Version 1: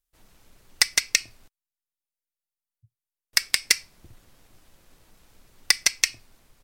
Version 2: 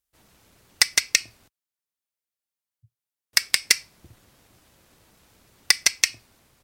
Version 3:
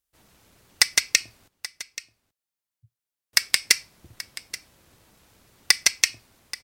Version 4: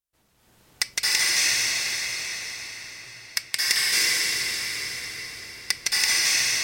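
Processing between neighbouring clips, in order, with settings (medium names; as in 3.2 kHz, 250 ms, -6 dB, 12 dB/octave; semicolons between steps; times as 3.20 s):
high-pass 57 Hz; trim +1.5 dB
delay 830 ms -16.5 dB
reverberation RT60 6.1 s, pre-delay 214 ms, DRR -11 dB; trim -7.5 dB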